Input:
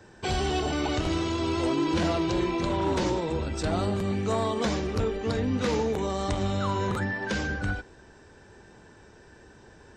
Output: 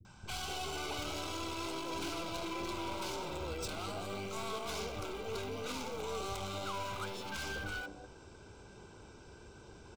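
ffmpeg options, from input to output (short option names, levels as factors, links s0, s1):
-filter_complex "[0:a]acrossover=split=480[s0][s1];[s0]acompressor=threshold=0.0126:ratio=6[s2];[s2][s1]amix=inputs=2:normalize=0,aeval=exprs='(tanh(63.1*val(0)+0.35)-tanh(0.35))/63.1':c=same,asplit=2[s3][s4];[s4]acrusher=bits=5:mix=0:aa=0.000001,volume=0.447[s5];[s3][s5]amix=inputs=2:normalize=0,aeval=exprs='0.0531*sin(PI/2*1.78*val(0)/0.0531)':c=same,asuperstop=centerf=1800:order=4:qfactor=3.6,acrossover=split=230|700[s6][s7][s8];[s8]adelay=50[s9];[s7]adelay=250[s10];[s6][s10][s9]amix=inputs=3:normalize=0,volume=0.398"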